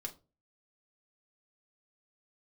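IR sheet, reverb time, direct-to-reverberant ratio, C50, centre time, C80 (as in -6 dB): no single decay rate, 1.5 dB, 16.5 dB, 8 ms, 23.0 dB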